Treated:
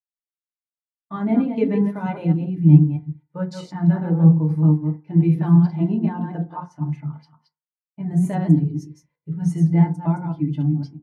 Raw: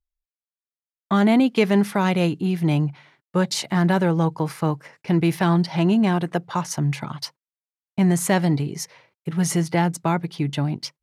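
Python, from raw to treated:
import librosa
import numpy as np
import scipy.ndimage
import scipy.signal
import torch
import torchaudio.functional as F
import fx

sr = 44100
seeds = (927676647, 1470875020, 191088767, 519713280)

y = fx.reverse_delay(x, sr, ms=129, wet_db=-4.0)
y = fx.bass_treble(y, sr, bass_db=-4, treble_db=-9, at=(6.47, 8.08))
y = fx.rev_fdn(y, sr, rt60_s=0.41, lf_ratio=1.0, hf_ratio=0.35, size_ms=20.0, drr_db=1.0)
y = fx.dynamic_eq(y, sr, hz=160.0, q=1.7, threshold_db=-27.0, ratio=4.0, max_db=6)
y = fx.spectral_expand(y, sr, expansion=1.5)
y = y * 10.0 ** (-3.0 / 20.0)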